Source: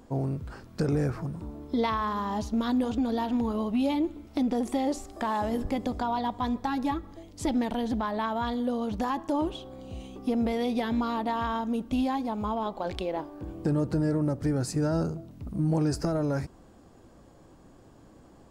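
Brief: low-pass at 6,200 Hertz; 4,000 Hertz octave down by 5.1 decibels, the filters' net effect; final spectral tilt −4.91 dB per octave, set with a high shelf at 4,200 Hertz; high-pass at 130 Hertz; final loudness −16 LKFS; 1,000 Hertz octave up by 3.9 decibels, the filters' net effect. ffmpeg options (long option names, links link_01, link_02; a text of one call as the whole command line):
ffmpeg -i in.wav -af "highpass=130,lowpass=6200,equalizer=frequency=1000:width_type=o:gain=5,equalizer=frequency=4000:width_type=o:gain=-3.5,highshelf=frequency=4200:gain=-5,volume=12.5dB" out.wav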